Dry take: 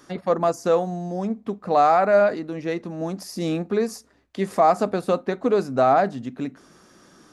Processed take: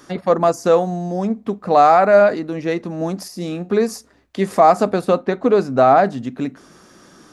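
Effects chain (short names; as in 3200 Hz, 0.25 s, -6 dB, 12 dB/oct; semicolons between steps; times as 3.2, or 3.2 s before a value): 3.28–3.69 resonator 180 Hz, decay 0.28 s, harmonics all, mix 60%; 5.05–6.03 high shelf 8700 Hz -11.5 dB; gain +5.5 dB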